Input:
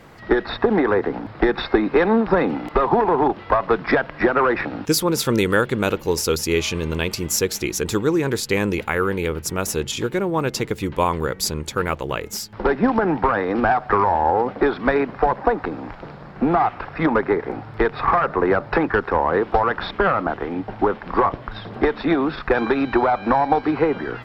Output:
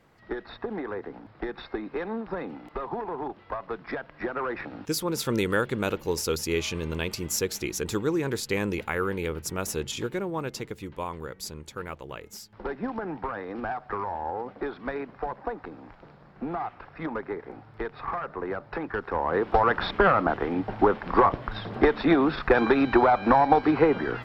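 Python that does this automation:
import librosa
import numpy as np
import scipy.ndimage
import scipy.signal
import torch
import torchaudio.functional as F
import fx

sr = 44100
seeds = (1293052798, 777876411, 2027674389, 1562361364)

y = fx.gain(x, sr, db=fx.line((3.99, -15.5), (5.38, -7.0), (9.99, -7.0), (10.96, -14.0), (18.77, -14.0), (19.7, -1.5)))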